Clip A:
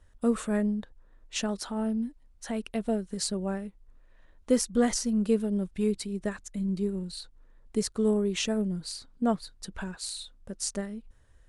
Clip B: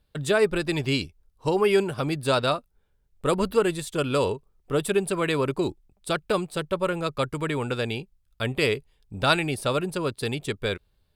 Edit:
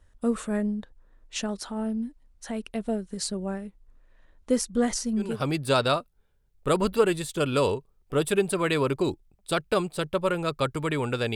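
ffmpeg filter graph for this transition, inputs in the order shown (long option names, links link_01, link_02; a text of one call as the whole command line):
ffmpeg -i cue0.wav -i cue1.wav -filter_complex "[0:a]apad=whole_dur=11.35,atrim=end=11.35,atrim=end=5.44,asetpts=PTS-STARTPTS[link_01];[1:a]atrim=start=1.74:end=7.93,asetpts=PTS-STARTPTS[link_02];[link_01][link_02]acrossfade=duration=0.28:curve1=tri:curve2=tri" out.wav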